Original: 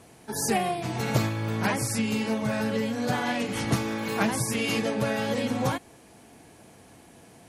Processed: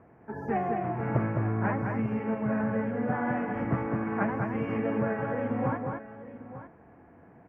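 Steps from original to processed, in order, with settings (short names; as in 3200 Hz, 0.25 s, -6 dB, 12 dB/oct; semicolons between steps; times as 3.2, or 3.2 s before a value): inverse Chebyshev low-pass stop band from 3600 Hz, stop band 40 dB; tapped delay 0.209/0.897 s -4.5/-14 dB; gain -3 dB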